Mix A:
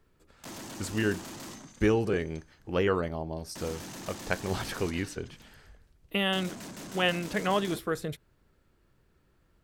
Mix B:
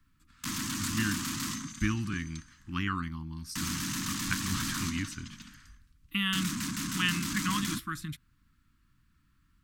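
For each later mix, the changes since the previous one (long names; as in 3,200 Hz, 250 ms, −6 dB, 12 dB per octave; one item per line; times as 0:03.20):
background +10.0 dB
master: add elliptic band-stop filter 280–1,100 Hz, stop band 60 dB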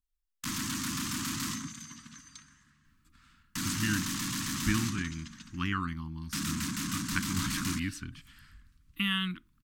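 speech: entry +2.85 s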